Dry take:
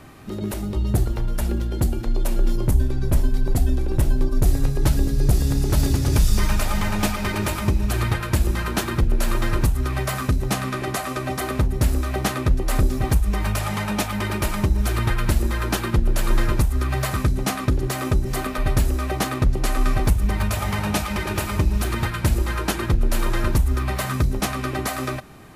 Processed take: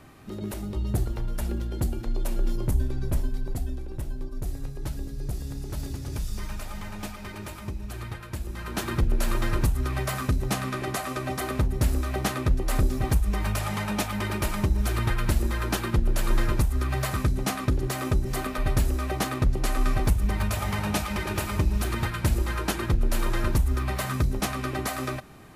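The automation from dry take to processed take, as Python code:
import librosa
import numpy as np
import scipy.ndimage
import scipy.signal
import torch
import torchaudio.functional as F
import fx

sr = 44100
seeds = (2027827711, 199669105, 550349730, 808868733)

y = fx.gain(x, sr, db=fx.line((3.0, -6.0), (3.98, -14.0), (8.48, -14.0), (8.9, -4.0)))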